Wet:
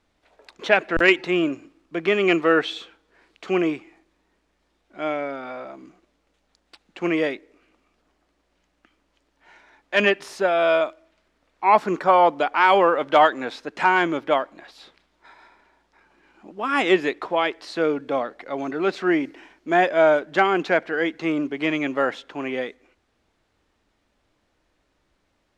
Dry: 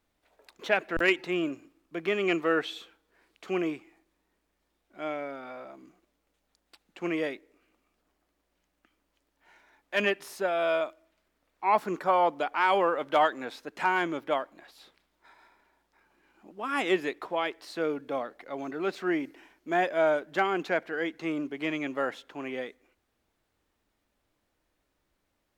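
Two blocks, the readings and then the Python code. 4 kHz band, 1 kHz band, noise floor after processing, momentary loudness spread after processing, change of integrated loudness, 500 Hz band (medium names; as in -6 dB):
+8.0 dB, +8.0 dB, -70 dBFS, 14 LU, +8.0 dB, +8.0 dB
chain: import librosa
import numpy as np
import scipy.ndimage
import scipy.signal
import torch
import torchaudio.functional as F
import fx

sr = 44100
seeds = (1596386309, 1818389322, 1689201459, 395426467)

y = scipy.signal.sosfilt(scipy.signal.butter(2, 6900.0, 'lowpass', fs=sr, output='sos'), x)
y = y * librosa.db_to_amplitude(8.0)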